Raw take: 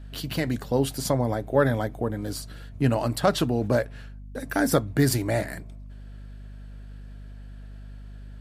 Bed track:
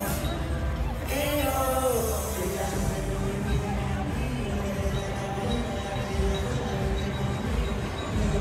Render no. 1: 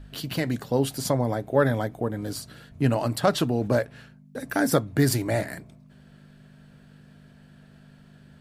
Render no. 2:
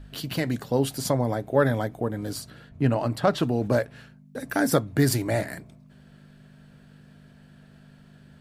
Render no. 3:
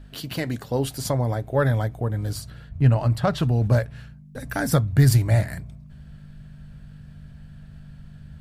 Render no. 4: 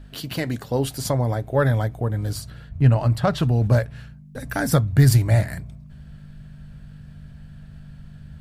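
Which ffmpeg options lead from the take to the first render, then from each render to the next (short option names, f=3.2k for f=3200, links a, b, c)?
-af "bandreject=f=50:t=h:w=4,bandreject=f=100:t=h:w=4"
-filter_complex "[0:a]asettb=1/sr,asplit=3[a][b][c];[a]atrim=end=2.504[d];[b]atrim=start=2.5:end=3.43,asetpts=PTS-STARTPTS,afade=t=in:d=0.004:c=qsin,afade=t=out:st=0.926:d=0.004:c=qsin,highshelf=f=4.8k:g=-11[e];[c]atrim=start=3.426[f];[d][e]acrossfade=d=0.004:c1=hsin:c2=qsin[g];[g][f]acrossfade=d=0.004:c1=qsin:c2=hsin"
-af "asubboost=boost=12:cutoff=94"
-af "volume=1.5dB"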